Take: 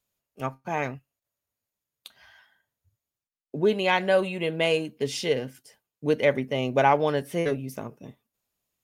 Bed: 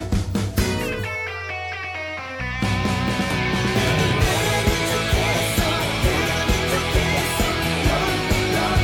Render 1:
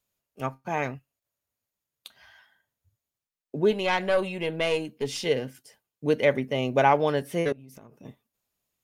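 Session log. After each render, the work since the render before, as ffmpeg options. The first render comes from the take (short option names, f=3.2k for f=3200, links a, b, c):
-filter_complex "[0:a]asettb=1/sr,asplit=3[a][b][c];[a]atrim=end=3.714[d];[b]atrim=start=3.71:end=5.26,asetpts=PTS-STARTPTS,afade=t=in:d=0.004:c=qsin,afade=t=out:st=1.546:d=0.004:c=qsin,aeval=exprs='(tanh(5.01*val(0)+0.4)-tanh(0.4))/5.01':c=same[e];[c]atrim=start=5.256[f];[d][e]acrossfade=d=0.004:c1=hsin:c2=qsin[g];[g][f]acrossfade=d=0.004:c1=qsin:c2=hsin,asettb=1/sr,asplit=3[h][i][j];[h]atrim=end=7.524[k];[i]atrim=start=7.52:end=8.05,asetpts=PTS-STARTPTS,afade=t=in:d=0.004:c=qsin,afade=t=out:st=0.526:d=0.004:c=qsin,acompressor=threshold=-43dB:ratio=16:attack=3.2:release=140:knee=1:detection=peak[l];[j]atrim=start=8.046[m];[k][l]acrossfade=d=0.004:c1=hsin:c2=qsin[n];[n][m]acrossfade=d=0.004:c1=qsin:c2=hsin"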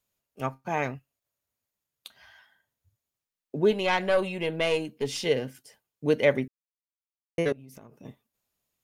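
-filter_complex "[0:a]asplit=3[a][b][c];[a]atrim=end=6.48,asetpts=PTS-STARTPTS,afade=t=out:st=6.476:d=0.004:c=hsin[d];[b]atrim=start=6.48:end=7.38,asetpts=PTS-STARTPTS,volume=0[e];[c]atrim=start=7.38,asetpts=PTS-STARTPTS,afade=t=in:d=0.004:c=hsin[f];[d][e][f]concat=n=3:v=0:a=1"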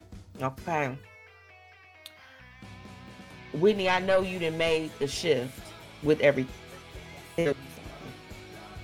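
-filter_complex "[1:a]volume=-25dB[a];[0:a][a]amix=inputs=2:normalize=0"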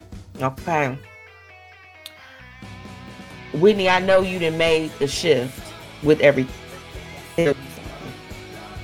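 -af "volume=8dB,alimiter=limit=-1dB:level=0:latency=1"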